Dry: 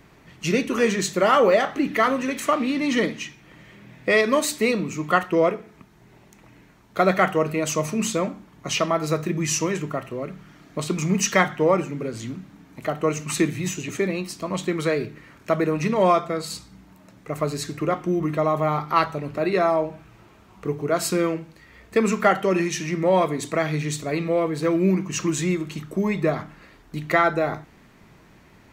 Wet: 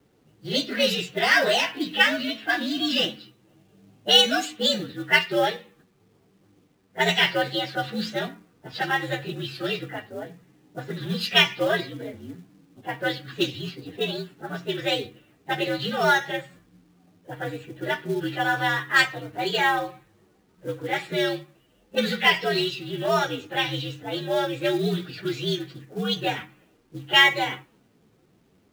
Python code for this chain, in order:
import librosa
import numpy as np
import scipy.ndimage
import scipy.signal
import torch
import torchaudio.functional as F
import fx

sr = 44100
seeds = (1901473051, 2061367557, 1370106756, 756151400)

y = fx.partial_stretch(x, sr, pct=121)
y = fx.env_lowpass(y, sr, base_hz=550.0, full_db=-17.5)
y = fx.weighting(y, sr, curve='D')
y = fx.quant_companded(y, sr, bits=6)
y = y * 10.0 ** (-1.5 / 20.0)